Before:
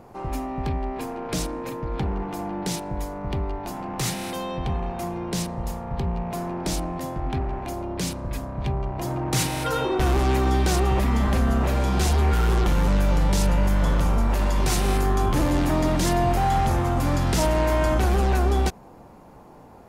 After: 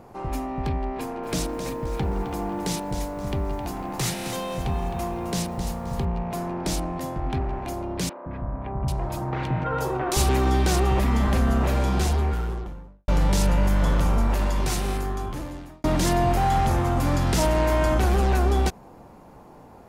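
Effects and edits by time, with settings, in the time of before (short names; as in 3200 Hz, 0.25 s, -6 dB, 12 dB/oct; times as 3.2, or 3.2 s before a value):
0.97–6.05 lo-fi delay 0.263 s, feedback 35%, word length 8-bit, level -9 dB
8.09–10.29 three bands offset in time mids, lows, highs 0.17/0.79 s, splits 350/2100 Hz
11.73–13.08 studio fade out
14.23–15.84 fade out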